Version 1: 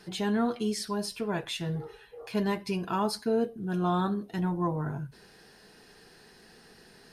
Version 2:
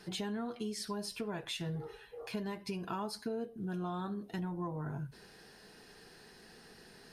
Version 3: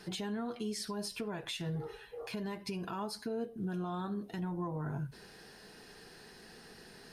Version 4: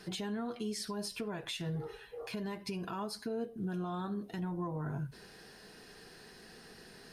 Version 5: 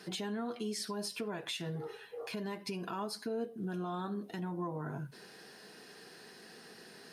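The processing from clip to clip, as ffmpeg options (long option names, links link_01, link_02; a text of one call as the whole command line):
ffmpeg -i in.wav -af "acompressor=threshold=-34dB:ratio=6,volume=-1.5dB" out.wav
ffmpeg -i in.wav -af "alimiter=level_in=8dB:limit=-24dB:level=0:latency=1:release=104,volume=-8dB,volume=2.5dB" out.wav
ffmpeg -i in.wav -af "bandreject=frequency=860:width=23" out.wav
ffmpeg -i in.wav -af "highpass=180,volume=1dB" out.wav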